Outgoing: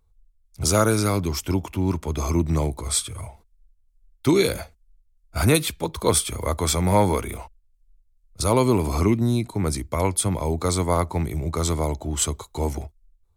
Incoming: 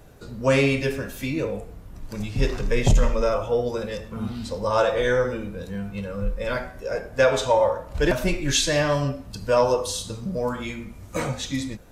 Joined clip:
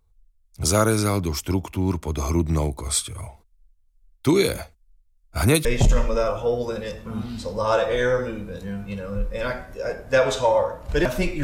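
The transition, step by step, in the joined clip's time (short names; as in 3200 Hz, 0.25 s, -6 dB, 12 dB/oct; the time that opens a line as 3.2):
outgoing
5.65 switch to incoming from 2.71 s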